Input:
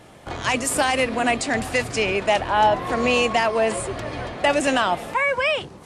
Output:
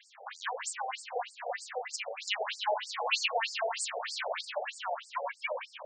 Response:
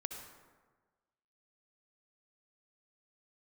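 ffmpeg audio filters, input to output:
-filter_complex "[0:a]acompressor=threshold=0.0282:ratio=4,asettb=1/sr,asplit=3[s0][s1][s2];[s0]atrim=end=2.204[s3];[s1]atrim=start=2.2:end=4.41,asetpts=PTS-STARTPTS,afade=t=in:d=0.004:c=qsin,afade=t=out:st=2.206:d=0.004:c=qsin,equalizer=f=4200:t=o:w=2.4:g=14.5[s4];[s2]atrim=start=4.406[s5];[s3][s4]acrossfade=d=0.004:c1=hsin:c2=qsin[s6];[s6][s5]acrossfade=d=0.004:c1=qsin:c2=hsin[s7];[1:a]atrim=start_sample=2205,asetrate=26460,aresample=44100[s8];[s7][s8]afir=irnorm=-1:irlink=0,afftfilt=real='re*between(b*sr/1024,600*pow(6400/600,0.5+0.5*sin(2*PI*3.2*pts/sr))/1.41,600*pow(6400/600,0.5+0.5*sin(2*PI*3.2*pts/sr))*1.41)':imag='im*between(b*sr/1024,600*pow(6400/600,0.5+0.5*sin(2*PI*3.2*pts/sr))/1.41,600*pow(6400/600,0.5+0.5*sin(2*PI*3.2*pts/sr))*1.41)':win_size=1024:overlap=0.75"

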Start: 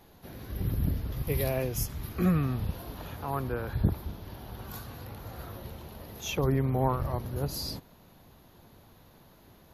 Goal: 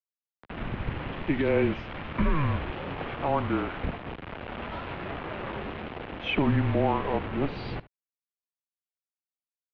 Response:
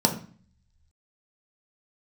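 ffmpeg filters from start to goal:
-af "dynaudnorm=f=130:g=9:m=4.22,alimiter=limit=0.335:level=0:latency=1:release=82,acrusher=bits=4:mix=0:aa=0.000001,aecho=1:1:71:0.119,highpass=f=200:t=q:w=0.5412,highpass=f=200:t=q:w=1.307,lowpass=f=3100:t=q:w=0.5176,lowpass=f=3100:t=q:w=0.7071,lowpass=f=3100:t=q:w=1.932,afreqshift=-150,volume=0.75"

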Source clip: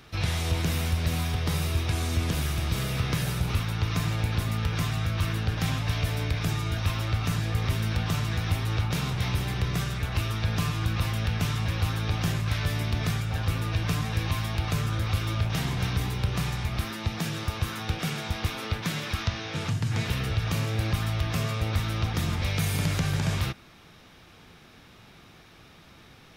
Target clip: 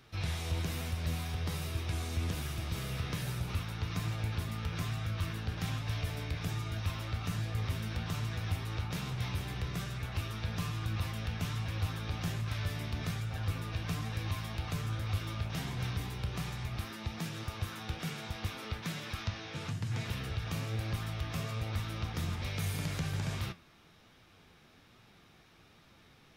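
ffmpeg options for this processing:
-af "flanger=delay=7.3:depth=7.7:regen=65:speed=1.2:shape=triangular,volume=0.596"

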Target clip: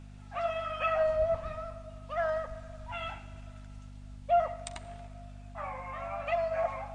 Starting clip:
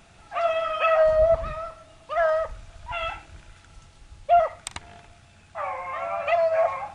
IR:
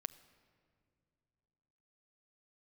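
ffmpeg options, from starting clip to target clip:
-filter_complex "[0:a]aeval=exprs='val(0)+0.0141*(sin(2*PI*50*n/s)+sin(2*PI*2*50*n/s)/2+sin(2*PI*3*50*n/s)/3+sin(2*PI*4*50*n/s)/4+sin(2*PI*5*50*n/s)/5)':c=same[s0];[1:a]atrim=start_sample=2205,asetrate=25137,aresample=44100[s1];[s0][s1]afir=irnorm=-1:irlink=0,volume=0.398" -ar 22050 -c:a libmp3lame -b:a 48k

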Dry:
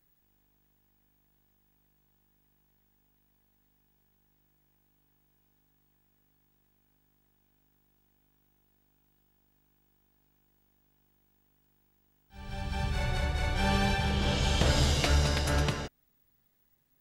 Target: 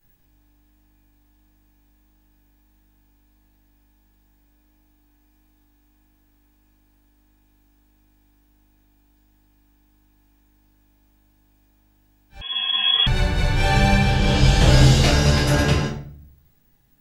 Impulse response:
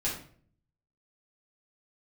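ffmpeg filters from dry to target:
-filter_complex "[1:a]atrim=start_sample=2205[s0];[0:a][s0]afir=irnorm=-1:irlink=0,asettb=1/sr,asplit=3[s1][s2][s3];[s1]atrim=end=12.414[s4];[s2]atrim=start=12.41:end=13.07,asetpts=PTS-STARTPTS,afade=t=in:d=0.004:c=qsin,afade=t=out:st=0.656:d=0.004:c=qsin,lowpass=f=2900:t=q:w=0.5098,lowpass=f=2900:t=q:w=0.6013,lowpass=f=2900:t=q:w=0.9,lowpass=f=2900:t=q:w=2.563,afreqshift=-3400[s5];[s3]atrim=start=13.066[s6];[s4][s5]acrossfade=d=0.004:c1=hsin:c2=qsin[s7];[s7][s6]acrossfade=d=0.004:c1=qsin:c2=hsin,volume=1.5"

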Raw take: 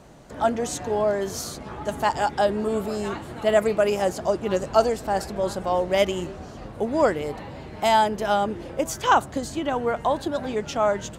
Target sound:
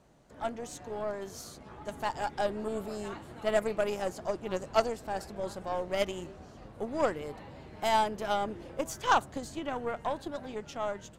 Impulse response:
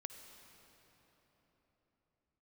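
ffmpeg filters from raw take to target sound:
-af "aeval=exprs='0.596*(cos(1*acos(clip(val(0)/0.596,-1,1)))-cos(1*PI/2))+0.106*(cos(3*acos(clip(val(0)/0.596,-1,1)))-cos(3*PI/2))+0.015*(cos(8*acos(clip(val(0)/0.596,-1,1)))-cos(8*PI/2))':c=same,dynaudnorm=f=650:g=7:m=2.37,volume=0.422"

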